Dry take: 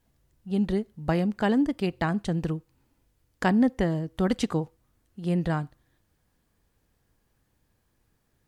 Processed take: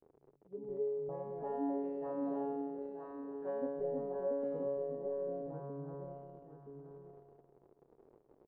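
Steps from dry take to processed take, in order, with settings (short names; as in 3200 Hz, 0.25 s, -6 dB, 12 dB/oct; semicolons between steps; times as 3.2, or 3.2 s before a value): reverse delay 0.634 s, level -2 dB; 1.43–3.62 tilt +3 dB/oct; resonator 140 Hz, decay 1.9 s, mix 100%; crackle 95/s -44 dBFS; bell 910 Hz +9.5 dB 1.4 oct; echo 0.974 s -8.5 dB; envelope low-pass 400–2900 Hz up, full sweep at -21.5 dBFS; gain +3 dB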